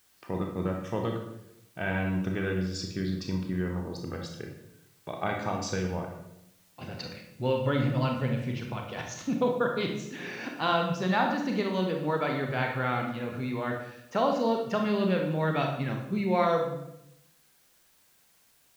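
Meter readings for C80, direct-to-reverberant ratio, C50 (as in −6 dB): 7.5 dB, 1.5 dB, 4.5 dB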